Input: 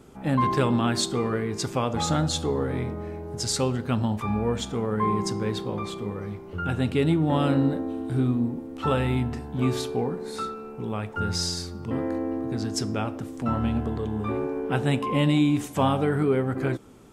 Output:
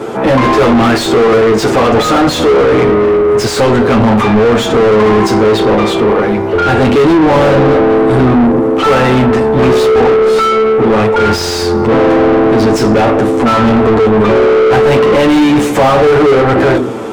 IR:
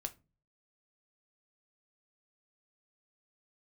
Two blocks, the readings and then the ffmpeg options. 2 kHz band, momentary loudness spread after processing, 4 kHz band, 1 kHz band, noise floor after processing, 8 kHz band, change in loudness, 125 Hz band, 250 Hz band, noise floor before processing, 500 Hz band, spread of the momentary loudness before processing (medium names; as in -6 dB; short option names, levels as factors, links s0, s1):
+20.5 dB, 3 LU, +14.0 dB, +18.0 dB, -15 dBFS, +9.0 dB, +17.5 dB, +10.5 dB, +15.5 dB, -40 dBFS, +21.5 dB, 9 LU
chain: -filter_complex "[0:a]equalizer=f=430:w=1.5:g=5.5,bandreject=f=50:t=h:w=6,bandreject=f=100:t=h:w=6,bandreject=f=150:t=h:w=6,bandreject=f=200:t=h:w=6,bandreject=f=250:t=h:w=6,asplit=2[s0][s1];[1:a]atrim=start_sample=2205,adelay=9[s2];[s1][s2]afir=irnorm=-1:irlink=0,volume=1.26[s3];[s0][s3]amix=inputs=2:normalize=0,asplit=2[s4][s5];[s5]highpass=f=720:p=1,volume=63.1,asoftclip=type=tanh:threshold=0.631[s6];[s4][s6]amix=inputs=2:normalize=0,lowpass=f=1300:p=1,volume=0.501,volume=1.5"